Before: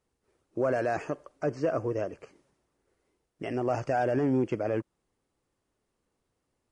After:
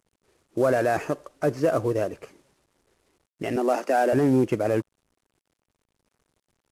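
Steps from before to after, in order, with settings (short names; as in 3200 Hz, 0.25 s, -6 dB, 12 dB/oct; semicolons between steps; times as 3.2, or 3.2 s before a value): CVSD 64 kbps; 3.56–4.13 steep high-pass 190 Hz 96 dB/oct; gain +6 dB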